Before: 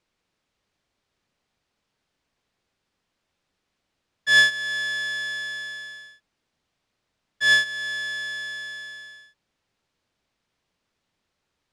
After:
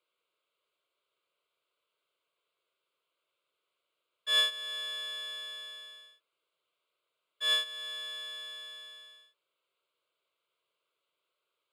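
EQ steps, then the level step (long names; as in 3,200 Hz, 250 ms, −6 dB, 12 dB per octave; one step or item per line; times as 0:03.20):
high-pass filter 380 Hz 12 dB per octave
phaser with its sweep stopped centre 1,200 Hz, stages 8
notch filter 2,500 Hz, Q 29
−2.0 dB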